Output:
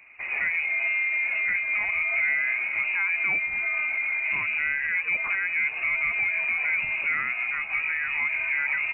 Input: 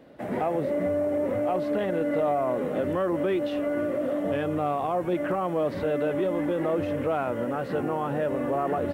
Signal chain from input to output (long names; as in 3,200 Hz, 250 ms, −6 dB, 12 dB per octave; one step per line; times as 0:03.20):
voice inversion scrambler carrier 2,700 Hz